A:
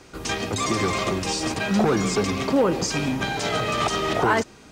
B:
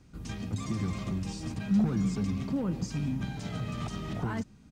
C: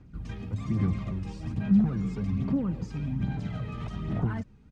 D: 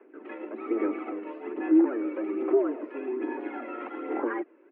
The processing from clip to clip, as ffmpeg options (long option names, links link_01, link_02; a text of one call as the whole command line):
ffmpeg -i in.wav -af "firequalizer=gain_entry='entry(200,0);entry(380,-17);entry(13000,-14)':delay=0.05:min_phase=1,volume=-2dB" out.wav
ffmpeg -i in.wav -af "bass=frequency=250:gain=4,treble=frequency=4000:gain=-13,aphaser=in_gain=1:out_gain=1:delay=2.4:decay=0.44:speed=1.2:type=sinusoidal,volume=-2.5dB" out.wav
ffmpeg -i in.wav -af "highpass=frequency=220:width_type=q:width=0.5412,highpass=frequency=220:width_type=q:width=1.307,lowpass=frequency=2300:width_type=q:width=0.5176,lowpass=frequency=2300:width_type=q:width=0.7071,lowpass=frequency=2300:width_type=q:width=1.932,afreqshift=120,volume=6dB" out.wav